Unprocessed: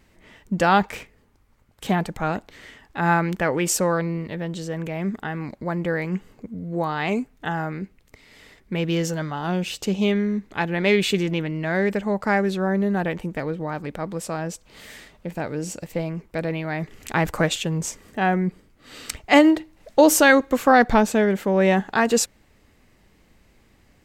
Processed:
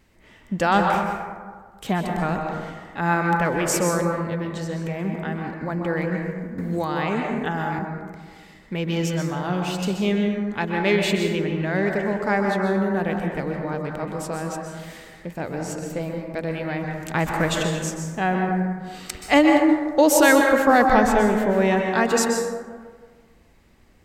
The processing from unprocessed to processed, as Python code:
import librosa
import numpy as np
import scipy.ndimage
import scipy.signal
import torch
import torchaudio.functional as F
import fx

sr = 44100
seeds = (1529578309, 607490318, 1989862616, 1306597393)

y = fx.rev_plate(x, sr, seeds[0], rt60_s=1.6, hf_ratio=0.35, predelay_ms=115, drr_db=1.5)
y = fx.band_squash(y, sr, depth_pct=70, at=(6.58, 7.79))
y = F.gain(torch.from_numpy(y), -2.0).numpy()